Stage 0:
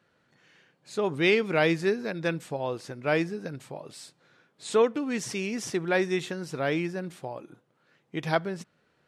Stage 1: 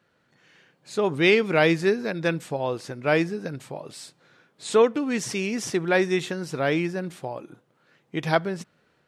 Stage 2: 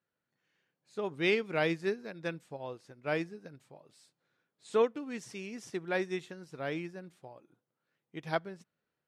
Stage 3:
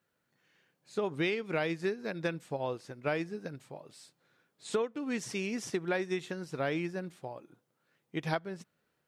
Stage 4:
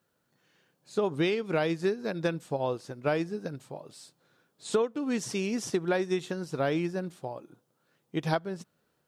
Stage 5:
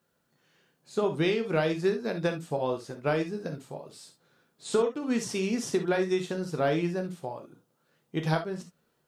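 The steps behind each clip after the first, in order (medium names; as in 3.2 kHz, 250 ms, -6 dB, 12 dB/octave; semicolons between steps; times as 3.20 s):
level rider gain up to 3 dB; trim +1 dB
upward expansion 1.5:1, over -39 dBFS; trim -8.5 dB
compression 12:1, threshold -36 dBFS, peak gain reduction 14.5 dB; trim +8 dB
peaking EQ 2.1 kHz -6.5 dB 0.83 oct; trim +5 dB
gated-style reverb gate 90 ms flat, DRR 5 dB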